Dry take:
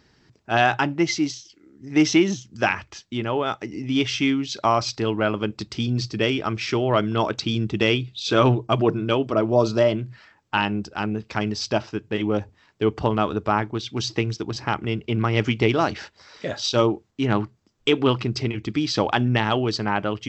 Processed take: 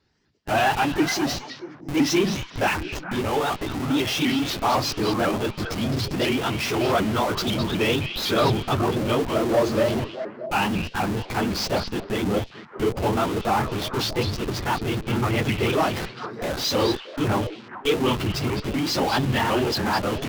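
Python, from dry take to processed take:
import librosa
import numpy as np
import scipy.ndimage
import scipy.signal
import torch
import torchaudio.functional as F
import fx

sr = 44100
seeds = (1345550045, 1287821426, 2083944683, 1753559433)

p1 = fx.phase_scramble(x, sr, seeds[0], window_ms=50)
p2 = fx.dynamic_eq(p1, sr, hz=830.0, q=4.2, threshold_db=-38.0, ratio=4.0, max_db=4)
p3 = fx.leveller(p2, sr, passes=1)
p4 = fx.peak_eq(p3, sr, hz=130.0, db=-2.5, octaves=0.3)
p5 = fx.schmitt(p4, sr, flips_db=-30.0)
p6 = p4 + F.gain(torch.from_numpy(p5), -3.0).numpy()
p7 = fx.echo_stepped(p6, sr, ms=210, hz=3500.0, octaves=-1.4, feedback_pct=70, wet_db=-5.0)
p8 = fx.vibrato_shape(p7, sr, shape='saw_up', rate_hz=4.0, depth_cents=160.0)
y = F.gain(torch.from_numpy(p8), -8.0).numpy()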